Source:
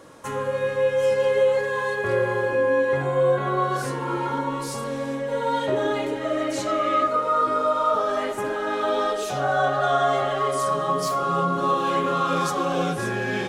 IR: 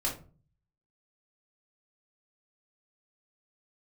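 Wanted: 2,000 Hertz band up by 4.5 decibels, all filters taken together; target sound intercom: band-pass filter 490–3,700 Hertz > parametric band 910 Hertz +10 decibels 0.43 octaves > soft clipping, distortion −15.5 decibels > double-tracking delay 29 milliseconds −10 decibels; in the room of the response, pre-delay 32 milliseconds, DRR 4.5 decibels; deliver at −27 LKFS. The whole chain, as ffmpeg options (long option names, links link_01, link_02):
-filter_complex "[0:a]equalizer=frequency=2000:width_type=o:gain=5.5,asplit=2[link_01][link_02];[1:a]atrim=start_sample=2205,adelay=32[link_03];[link_02][link_03]afir=irnorm=-1:irlink=0,volume=-10dB[link_04];[link_01][link_04]amix=inputs=2:normalize=0,highpass=490,lowpass=3700,equalizer=frequency=910:width_type=o:width=0.43:gain=10,asoftclip=threshold=-13.5dB,asplit=2[link_05][link_06];[link_06]adelay=29,volume=-10dB[link_07];[link_05][link_07]amix=inputs=2:normalize=0,volume=-7dB"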